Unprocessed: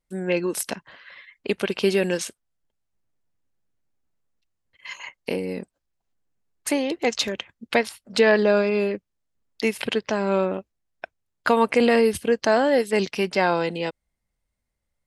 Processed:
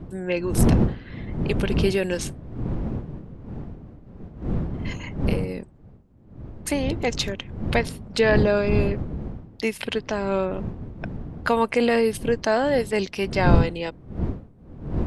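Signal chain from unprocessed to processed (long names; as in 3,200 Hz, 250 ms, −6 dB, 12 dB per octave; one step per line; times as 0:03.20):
wind on the microphone 190 Hz −25 dBFS
level −2 dB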